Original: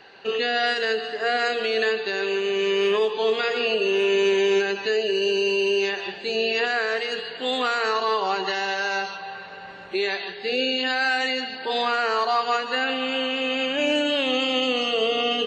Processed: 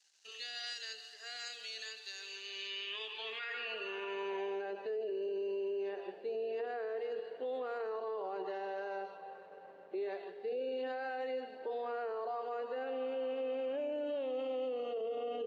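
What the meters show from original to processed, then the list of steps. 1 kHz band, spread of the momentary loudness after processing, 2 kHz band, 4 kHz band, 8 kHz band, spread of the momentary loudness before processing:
−17.5 dB, 6 LU, −21.5 dB, −20.0 dB, can't be measured, 6 LU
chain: dead-zone distortion −49.5 dBFS
band-pass filter sweep 6,300 Hz → 500 Hz, 0:02.20–0:04.97
brickwall limiter −28.5 dBFS, peak gain reduction 11 dB
level −3.5 dB

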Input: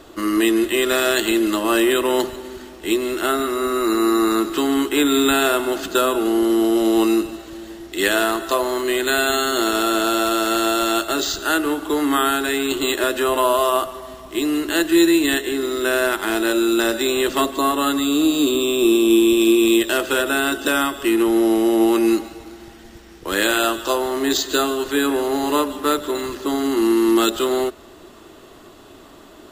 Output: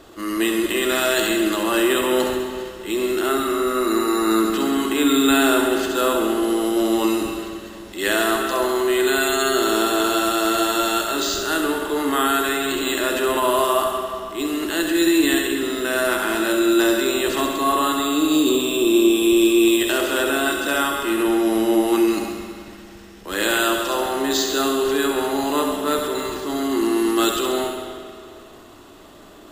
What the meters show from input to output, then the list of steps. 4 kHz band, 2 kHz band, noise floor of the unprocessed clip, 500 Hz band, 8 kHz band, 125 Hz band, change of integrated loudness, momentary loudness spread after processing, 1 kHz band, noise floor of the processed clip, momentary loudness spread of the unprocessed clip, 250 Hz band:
−0.5 dB, −0.5 dB, −44 dBFS, −1.0 dB, 0.0 dB, 0.0 dB, −1.0 dB, 9 LU, 0.0 dB, −42 dBFS, 7 LU, −1.5 dB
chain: transient designer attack −6 dB, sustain +4 dB
on a send: delay with a high-pass on its return 67 ms, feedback 60%, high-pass 4,800 Hz, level −3.5 dB
on the sum: spring reverb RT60 2.1 s, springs 45/55 ms, chirp 45 ms, DRR 3 dB
level −2 dB

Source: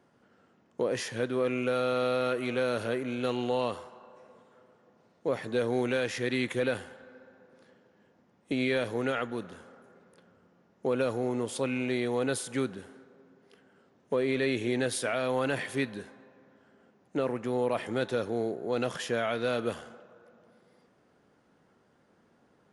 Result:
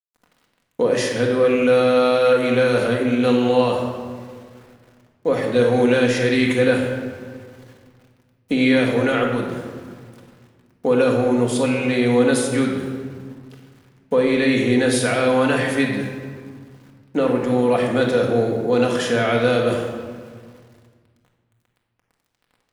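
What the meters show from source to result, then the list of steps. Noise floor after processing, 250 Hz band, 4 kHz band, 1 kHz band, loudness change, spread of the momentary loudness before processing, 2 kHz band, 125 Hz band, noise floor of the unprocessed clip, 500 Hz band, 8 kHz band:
−70 dBFS, +13.5 dB, +10.5 dB, +11.0 dB, +12.0 dB, 8 LU, +11.5 dB, +13.0 dB, −66 dBFS, +12.0 dB, +10.0 dB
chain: centre clipping without the shift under −56 dBFS
rectangular room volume 1,600 cubic metres, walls mixed, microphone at 1.9 metres
level +8 dB

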